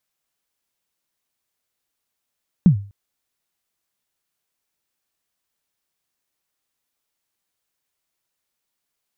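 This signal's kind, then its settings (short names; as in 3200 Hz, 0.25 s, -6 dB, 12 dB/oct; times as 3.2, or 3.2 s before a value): kick drum length 0.25 s, from 200 Hz, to 100 Hz, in 0.101 s, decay 0.38 s, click off, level -4.5 dB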